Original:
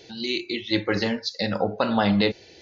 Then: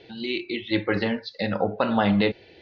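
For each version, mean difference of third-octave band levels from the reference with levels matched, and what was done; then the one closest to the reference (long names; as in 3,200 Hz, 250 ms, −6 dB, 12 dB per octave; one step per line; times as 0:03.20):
1.5 dB: low-pass filter 3,500 Hz 24 dB per octave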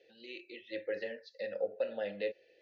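7.0 dB: formant filter e
level −5 dB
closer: first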